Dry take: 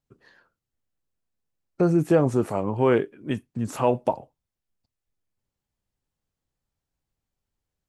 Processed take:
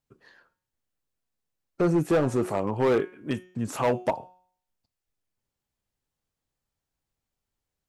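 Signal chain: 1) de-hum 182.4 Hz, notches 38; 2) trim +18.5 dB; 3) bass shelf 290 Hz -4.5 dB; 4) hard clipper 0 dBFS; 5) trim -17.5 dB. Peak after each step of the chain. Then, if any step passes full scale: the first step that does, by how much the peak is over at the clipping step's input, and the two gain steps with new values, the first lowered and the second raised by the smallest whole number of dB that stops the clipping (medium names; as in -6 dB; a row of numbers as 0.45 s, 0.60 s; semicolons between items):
-7.5 dBFS, +11.0 dBFS, +9.5 dBFS, 0.0 dBFS, -17.5 dBFS; step 2, 9.5 dB; step 2 +8.5 dB, step 5 -7.5 dB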